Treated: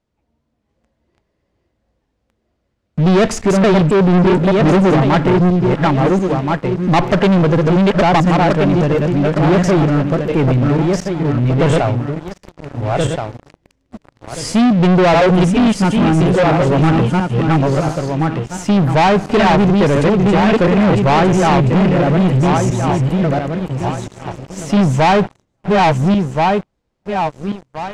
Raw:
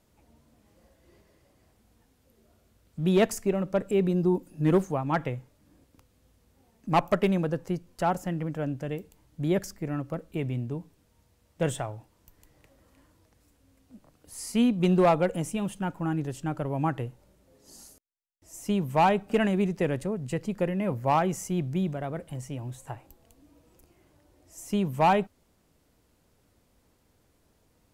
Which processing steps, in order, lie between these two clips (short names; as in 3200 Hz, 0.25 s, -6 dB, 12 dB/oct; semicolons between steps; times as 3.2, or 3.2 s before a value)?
regenerating reverse delay 0.688 s, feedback 44%, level -2 dB; sample leveller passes 5; air absorption 100 m; gain +2.5 dB